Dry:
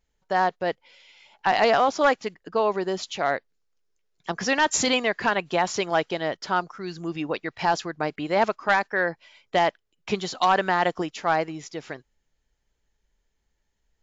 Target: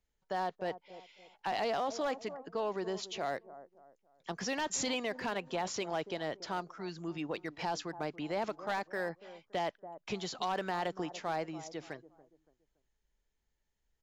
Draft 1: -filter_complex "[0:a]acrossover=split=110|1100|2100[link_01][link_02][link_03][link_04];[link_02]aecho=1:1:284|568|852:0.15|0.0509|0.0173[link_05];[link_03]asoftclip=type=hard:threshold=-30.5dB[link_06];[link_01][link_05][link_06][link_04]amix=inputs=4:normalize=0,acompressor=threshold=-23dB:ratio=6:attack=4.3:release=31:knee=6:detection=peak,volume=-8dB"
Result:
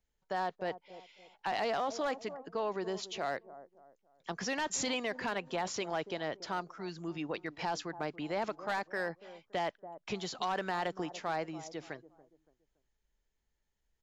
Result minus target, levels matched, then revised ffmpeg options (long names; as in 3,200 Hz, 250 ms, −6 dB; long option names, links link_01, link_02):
hard clipping: distortion −5 dB
-filter_complex "[0:a]acrossover=split=110|1100|2100[link_01][link_02][link_03][link_04];[link_02]aecho=1:1:284|568|852:0.15|0.0509|0.0173[link_05];[link_03]asoftclip=type=hard:threshold=-40dB[link_06];[link_01][link_05][link_06][link_04]amix=inputs=4:normalize=0,acompressor=threshold=-23dB:ratio=6:attack=4.3:release=31:knee=6:detection=peak,volume=-8dB"